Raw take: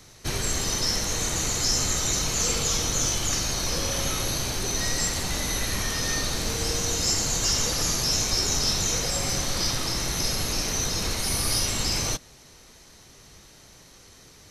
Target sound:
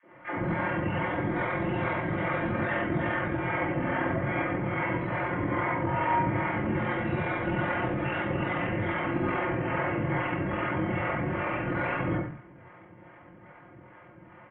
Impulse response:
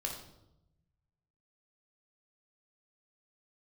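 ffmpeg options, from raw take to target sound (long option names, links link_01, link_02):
-filter_complex "[0:a]bandreject=frequency=50:width_type=h:width=6,bandreject=frequency=100:width_type=h:width=6,bandreject=frequency=150:width_type=h:width=6,bandreject=frequency=200:width_type=h:width=6,bandreject=frequency=250:width_type=h:width=6,aecho=1:1:2.9:0.65,acrossover=split=500|2700[link_01][link_02][link_03];[link_02]adelay=30[link_04];[link_01]adelay=110[link_05];[link_05][link_04][link_03]amix=inputs=3:normalize=0,acrossover=split=940[link_06][link_07];[link_06]aeval=exprs='val(0)*(1-0.7/2+0.7/2*cos(2*PI*2.4*n/s))':channel_layout=same[link_08];[link_07]aeval=exprs='val(0)*(1-0.7/2-0.7/2*cos(2*PI*2.4*n/s))':channel_layout=same[link_09];[link_08][link_09]amix=inputs=2:normalize=0,volume=23dB,asoftclip=hard,volume=-23dB,highpass=frequency=220:width_type=q:width=0.5412,highpass=frequency=220:width_type=q:width=1.307,lowpass=frequency=3500:width_type=q:width=0.5176,lowpass=frequency=3500:width_type=q:width=0.7071,lowpass=frequency=3500:width_type=q:width=1.932,afreqshift=-53[link_10];[1:a]atrim=start_sample=2205,atrim=end_sample=6615[link_11];[link_10][link_11]afir=irnorm=-1:irlink=0,asetrate=23361,aresample=44100,atempo=1.88775,volume=8.5dB"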